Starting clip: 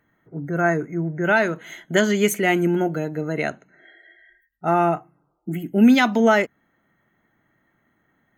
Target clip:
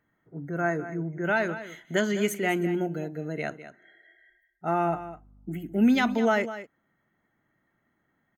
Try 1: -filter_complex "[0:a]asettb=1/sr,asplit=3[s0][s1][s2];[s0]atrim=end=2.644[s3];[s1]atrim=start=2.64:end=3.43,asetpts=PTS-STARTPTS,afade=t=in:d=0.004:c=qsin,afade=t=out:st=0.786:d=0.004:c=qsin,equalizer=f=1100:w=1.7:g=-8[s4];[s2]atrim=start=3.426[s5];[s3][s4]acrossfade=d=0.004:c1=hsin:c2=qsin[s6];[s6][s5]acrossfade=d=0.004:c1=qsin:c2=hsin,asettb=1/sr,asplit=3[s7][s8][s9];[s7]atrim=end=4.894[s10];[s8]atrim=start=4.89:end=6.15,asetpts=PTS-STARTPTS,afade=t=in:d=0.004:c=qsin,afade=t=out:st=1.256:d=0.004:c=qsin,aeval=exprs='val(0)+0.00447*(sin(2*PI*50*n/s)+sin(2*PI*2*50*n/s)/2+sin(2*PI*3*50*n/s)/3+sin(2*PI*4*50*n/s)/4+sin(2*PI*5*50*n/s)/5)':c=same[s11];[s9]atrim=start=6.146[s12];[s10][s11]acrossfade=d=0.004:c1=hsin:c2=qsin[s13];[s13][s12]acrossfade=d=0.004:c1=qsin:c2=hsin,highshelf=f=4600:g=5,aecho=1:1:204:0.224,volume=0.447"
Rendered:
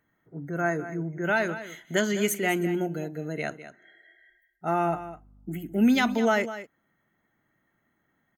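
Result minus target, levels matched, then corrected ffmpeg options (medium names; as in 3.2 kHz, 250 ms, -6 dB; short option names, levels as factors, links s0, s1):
8 kHz band +5.0 dB
-filter_complex "[0:a]asettb=1/sr,asplit=3[s0][s1][s2];[s0]atrim=end=2.644[s3];[s1]atrim=start=2.64:end=3.43,asetpts=PTS-STARTPTS,afade=t=in:d=0.004:c=qsin,afade=t=out:st=0.786:d=0.004:c=qsin,equalizer=f=1100:w=1.7:g=-8[s4];[s2]atrim=start=3.426[s5];[s3][s4]acrossfade=d=0.004:c1=hsin:c2=qsin[s6];[s6][s5]acrossfade=d=0.004:c1=qsin:c2=hsin,asettb=1/sr,asplit=3[s7][s8][s9];[s7]atrim=end=4.894[s10];[s8]atrim=start=4.89:end=6.15,asetpts=PTS-STARTPTS,afade=t=in:d=0.004:c=qsin,afade=t=out:st=1.256:d=0.004:c=qsin,aeval=exprs='val(0)+0.00447*(sin(2*PI*50*n/s)+sin(2*PI*2*50*n/s)/2+sin(2*PI*3*50*n/s)/3+sin(2*PI*4*50*n/s)/4+sin(2*PI*5*50*n/s)/5)':c=same[s11];[s9]atrim=start=6.146[s12];[s10][s11]acrossfade=d=0.004:c1=hsin:c2=qsin[s13];[s13][s12]acrossfade=d=0.004:c1=qsin:c2=hsin,highshelf=f=4600:g=-2.5,aecho=1:1:204:0.224,volume=0.447"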